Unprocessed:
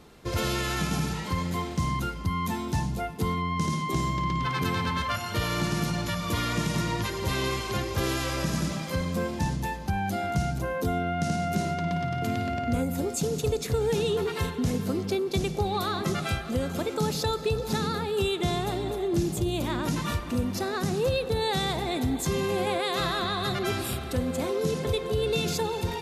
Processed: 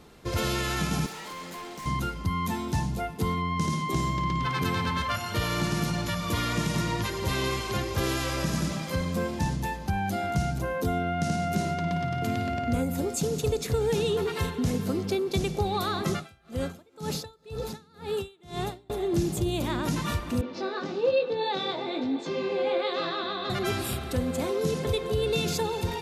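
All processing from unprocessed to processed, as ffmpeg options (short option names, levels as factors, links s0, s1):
-filter_complex "[0:a]asettb=1/sr,asplit=3[s0][s1][s2];[s0]atrim=end=1.064[s3];[s1]atrim=start=1.06:end=1.86,asetpts=PTS-STARTPTS,afade=t=in:d=0.004:c=qsin,afade=t=out:st=0.796:d=0.004:c=qsin,highpass=350,asoftclip=type=hard:threshold=0.0141[s4];[s2]atrim=start=1.856[s5];[s3][s4]acrossfade=d=0.004:c1=hsin:c2=qsin[s6];[s6][s5]acrossfade=d=0.004:c1=qsin:c2=hsin,asettb=1/sr,asplit=3[s7][s8][s9];[s7]atrim=end=16.134[s10];[s8]atrim=start=16.13:end=18.9,asetpts=PTS-STARTPTS,afade=t=in:d=0.004:c=qsin,afade=t=out:st=2.766:d=0.004:c=qsin,acompressor=mode=upward:threshold=0.0398:ratio=2.5:attack=3.2:release=140:knee=2.83:detection=peak,aeval=exprs='val(0)*pow(10,-31*(0.5-0.5*cos(2*PI*2*n/s))/20)':c=same[s11];[s9]atrim=start=18.896[s12];[s10][s11]acrossfade=d=0.004:c1=hsin:c2=qsin[s13];[s13][s12]acrossfade=d=0.004:c1=qsin:c2=hsin,asettb=1/sr,asplit=3[s14][s15][s16];[s14]atrim=end=20.414[s17];[s15]atrim=start=20.41:end=23.5,asetpts=PTS-STARTPTS,afade=t=in:d=0.004:c=qsin,afade=t=out:st=3.086:d=0.004:c=qsin,aecho=1:1:3.4:0.42,atrim=end_sample=136269,flanger=delay=17.5:depth=5.8:speed=1.1,highpass=f=170:w=0.5412,highpass=f=170:w=1.3066,equalizer=f=210:t=q:w=4:g=-6,equalizer=f=480:t=q:w=4:g=8,equalizer=f=1900:t=q:w=4:g=-3,lowpass=f=4600:w=0.5412,lowpass=f=4600:w=1.3066[s18];[s16]atrim=start=23.496[s19];[s17][s18]acrossfade=d=0.004:c1=hsin:c2=qsin[s20];[s20][s19]acrossfade=d=0.004:c1=qsin:c2=hsin"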